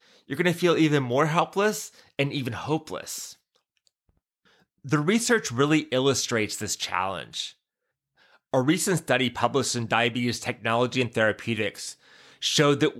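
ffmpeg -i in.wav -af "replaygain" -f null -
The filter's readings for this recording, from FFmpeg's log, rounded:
track_gain = +4.4 dB
track_peak = 0.296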